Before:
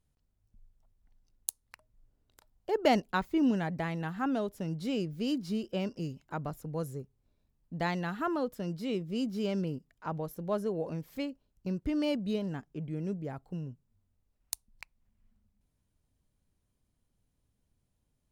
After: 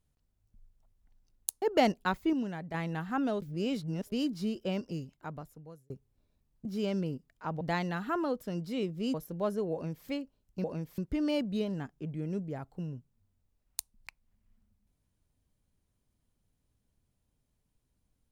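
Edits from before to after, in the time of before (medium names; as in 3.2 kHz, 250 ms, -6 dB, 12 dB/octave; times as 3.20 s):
1.62–2.70 s: delete
3.41–3.82 s: gain -6.5 dB
4.50–5.20 s: reverse
5.92–6.98 s: fade out
9.26–10.22 s: move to 7.73 s
10.81–11.15 s: copy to 11.72 s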